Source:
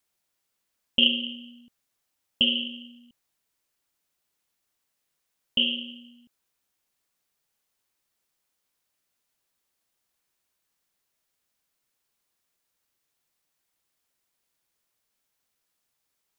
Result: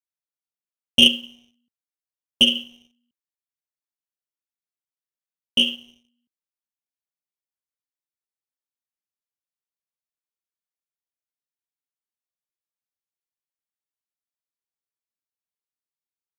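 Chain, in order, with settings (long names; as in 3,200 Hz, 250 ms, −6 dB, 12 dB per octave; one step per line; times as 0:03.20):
high-pass filter 79 Hz 12 dB per octave
leveller curve on the samples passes 2
expander for the loud parts 2.5 to 1, over −26 dBFS
level +3 dB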